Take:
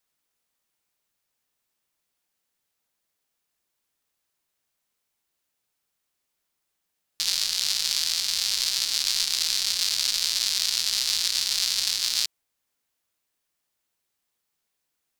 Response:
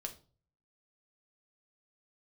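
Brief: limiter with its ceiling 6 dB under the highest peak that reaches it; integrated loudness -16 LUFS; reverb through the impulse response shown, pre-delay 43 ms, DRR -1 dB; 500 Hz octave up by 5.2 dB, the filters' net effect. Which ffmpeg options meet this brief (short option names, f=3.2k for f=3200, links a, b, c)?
-filter_complex "[0:a]equalizer=f=500:t=o:g=6.5,alimiter=limit=-11.5dB:level=0:latency=1,asplit=2[a][b];[1:a]atrim=start_sample=2205,adelay=43[c];[b][c]afir=irnorm=-1:irlink=0,volume=3dB[d];[a][d]amix=inputs=2:normalize=0,volume=7dB"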